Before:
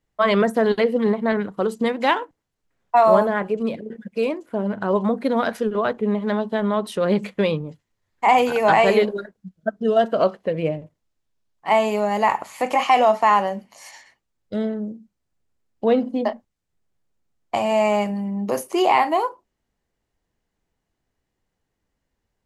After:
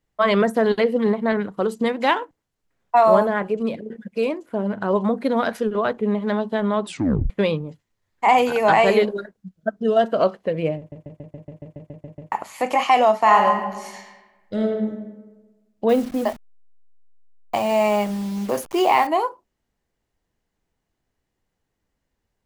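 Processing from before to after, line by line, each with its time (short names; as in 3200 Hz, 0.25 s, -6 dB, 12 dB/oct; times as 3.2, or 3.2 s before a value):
6.84 tape stop 0.46 s
10.78 stutter in place 0.14 s, 11 plays
13.19–14.91 reverb throw, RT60 1.2 s, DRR 1.5 dB
15.89–19.07 level-crossing sampler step -34.5 dBFS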